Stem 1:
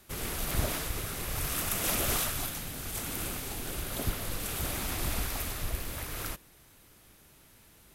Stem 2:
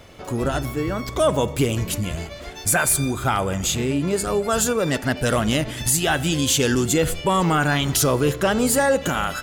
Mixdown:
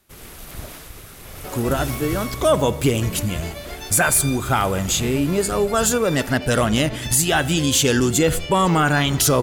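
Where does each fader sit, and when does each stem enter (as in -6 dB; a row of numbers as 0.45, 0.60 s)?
-4.5, +2.0 dB; 0.00, 1.25 s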